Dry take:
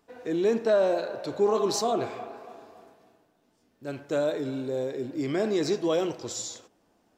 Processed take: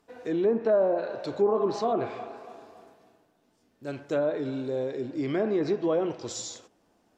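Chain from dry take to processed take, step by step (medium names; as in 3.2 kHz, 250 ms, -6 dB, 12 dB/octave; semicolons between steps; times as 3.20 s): low-pass that closes with the level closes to 1.1 kHz, closed at -20 dBFS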